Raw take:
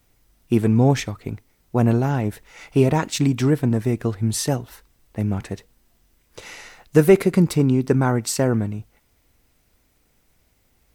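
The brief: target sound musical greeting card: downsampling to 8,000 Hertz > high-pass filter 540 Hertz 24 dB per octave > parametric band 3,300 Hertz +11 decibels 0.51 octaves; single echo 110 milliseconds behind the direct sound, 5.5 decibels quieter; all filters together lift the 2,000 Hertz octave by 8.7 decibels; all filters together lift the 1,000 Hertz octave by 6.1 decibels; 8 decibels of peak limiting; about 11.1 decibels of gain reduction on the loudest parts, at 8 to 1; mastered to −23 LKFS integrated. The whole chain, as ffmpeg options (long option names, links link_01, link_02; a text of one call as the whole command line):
ffmpeg -i in.wav -af "equalizer=frequency=1000:width_type=o:gain=6.5,equalizer=frequency=2000:width_type=o:gain=7,acompressor=threshold=-18dB:ratio=8,alimiter=limit=-16dB:level=0:latency=1,aecho=1:1:110:0.531,aresample=8000,aresample=44100,highpass=frequency=540:width=0.5412,highpass=frequency=540:width=1.3066,equalizer=frequency=3300:width_type=o:width=0.51:gain=11,volume=8.5dB" out.wav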